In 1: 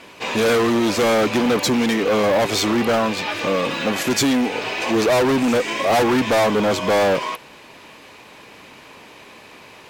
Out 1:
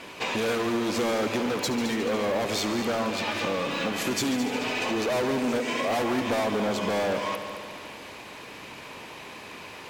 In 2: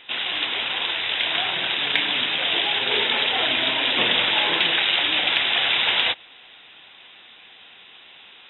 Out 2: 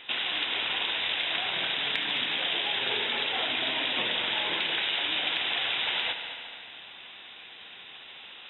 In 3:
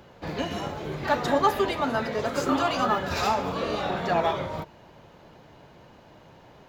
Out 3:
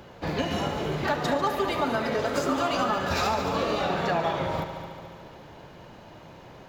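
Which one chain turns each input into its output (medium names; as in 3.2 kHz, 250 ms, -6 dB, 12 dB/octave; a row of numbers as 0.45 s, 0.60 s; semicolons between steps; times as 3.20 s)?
compression 6:1, threshold -27 dBFS; multi-head delay 72 ms, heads all three, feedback 63%, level -14.5 dB; normalise loudness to -27 LUFS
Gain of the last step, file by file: +0.5 dB, 0.0 dB, +4.0 dB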